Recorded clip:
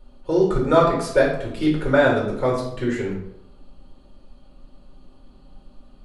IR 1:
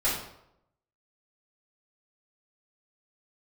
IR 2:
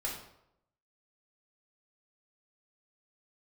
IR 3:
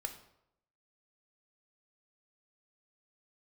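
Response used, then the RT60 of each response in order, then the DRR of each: 2; 0.80, 0.80, 0.80 seconds; −10.0, −3.5, 6.0 decibels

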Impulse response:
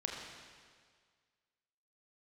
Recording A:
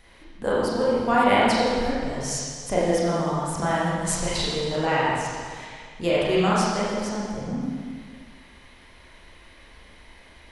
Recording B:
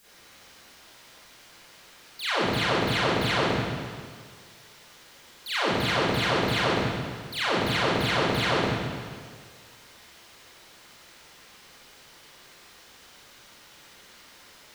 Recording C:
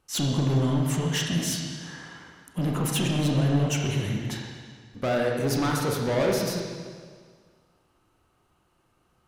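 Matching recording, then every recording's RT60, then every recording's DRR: C; 1.8, 1.8, 1.8 seconds; −7.5, −13.5, −1.0 decibels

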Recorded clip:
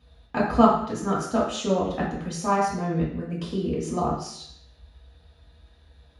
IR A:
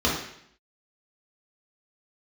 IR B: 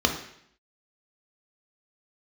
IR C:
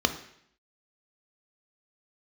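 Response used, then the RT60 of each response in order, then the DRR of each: A; 0.70, 0.70, 0.70 seconds; −6.5, 2.5, 7.0 decibels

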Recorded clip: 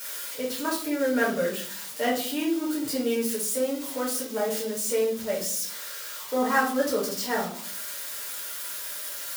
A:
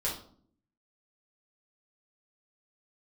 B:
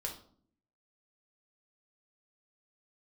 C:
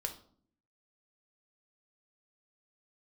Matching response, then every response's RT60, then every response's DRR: A; 0.55, 0.55, 0.55 seconds; −6.5, 0.0, 4.0 decibels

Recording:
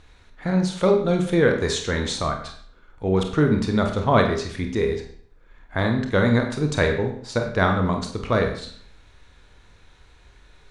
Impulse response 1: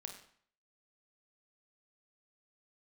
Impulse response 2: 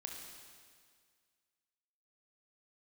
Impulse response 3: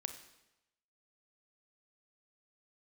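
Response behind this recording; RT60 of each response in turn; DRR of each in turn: 1; 0.55, 1.9, 0.95 seconds; 3.5, 0.5, 7.5 decibels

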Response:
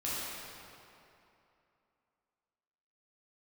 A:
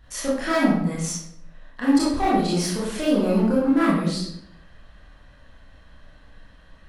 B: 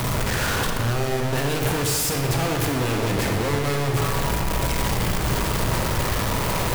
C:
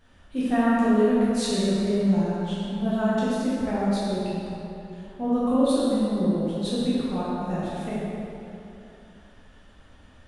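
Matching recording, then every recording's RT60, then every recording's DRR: C; 0.75, 1.8, 2.8 seconds; −9.5, 1.5, −9.5 decibels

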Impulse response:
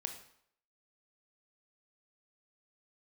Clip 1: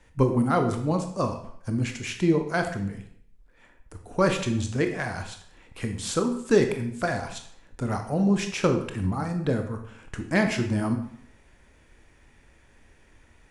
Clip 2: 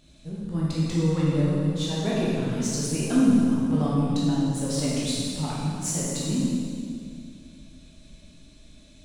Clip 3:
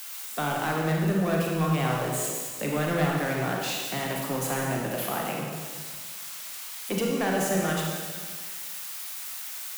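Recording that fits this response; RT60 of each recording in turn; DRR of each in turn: 1; 0.65, 2.3, 1.7 seconds; 5.0, −7.0, −1.5 decibels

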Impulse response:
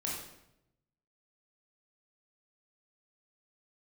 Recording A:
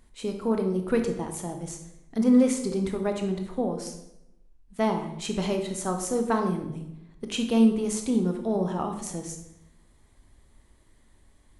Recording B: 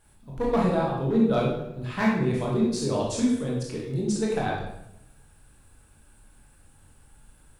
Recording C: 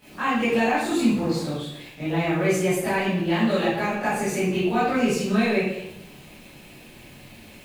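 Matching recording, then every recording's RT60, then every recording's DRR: B; 0.85, 0.85, 0.85 seconds; 4.0, −4.0, −14.0 decibels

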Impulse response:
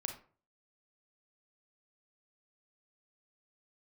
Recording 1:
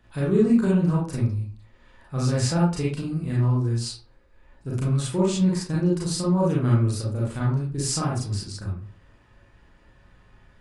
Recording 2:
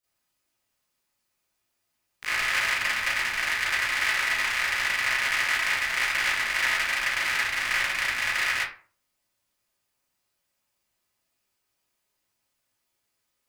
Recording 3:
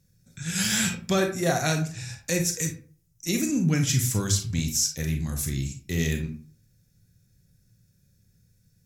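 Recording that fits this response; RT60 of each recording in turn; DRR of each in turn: 3; 0.45, 0.45, 0.45 seconds; −6.0, −12.5, 4.0 decibels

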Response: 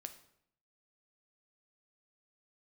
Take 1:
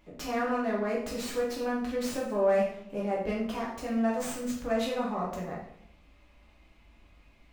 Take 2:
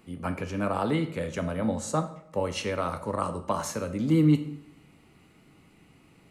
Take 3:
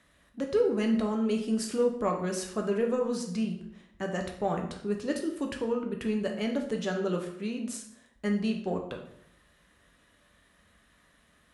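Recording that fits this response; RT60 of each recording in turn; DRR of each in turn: 2; 0.70, 0.70, 0.70 seconds; −5.0, 7.5, 2.0 decibels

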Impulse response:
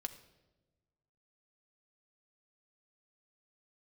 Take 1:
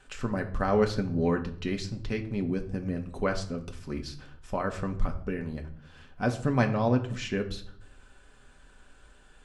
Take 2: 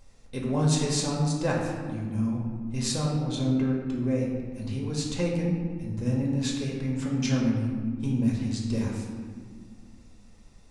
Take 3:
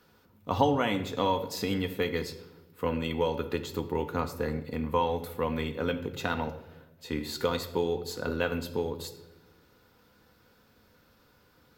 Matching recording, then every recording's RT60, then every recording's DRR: 3; 0.60, 1.8, 1.1 seconds; 3.5, −3.0, 6.0 decibels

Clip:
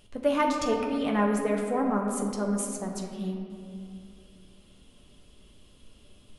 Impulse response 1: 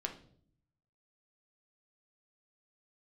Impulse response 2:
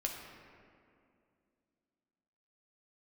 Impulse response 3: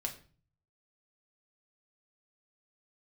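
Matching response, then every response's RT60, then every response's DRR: 2; 0.55, 2.4, 0.40 seconds; 2.5, 0.0, 1.5 decibels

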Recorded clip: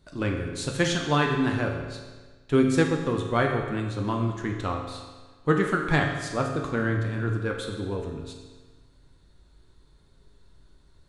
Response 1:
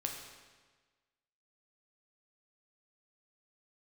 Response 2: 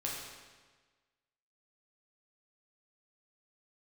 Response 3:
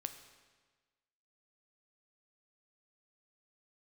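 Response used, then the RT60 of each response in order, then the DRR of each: 1; 1.4, 1.4, 1.4 seconds; 1.0, −4.5, 7.5 decibels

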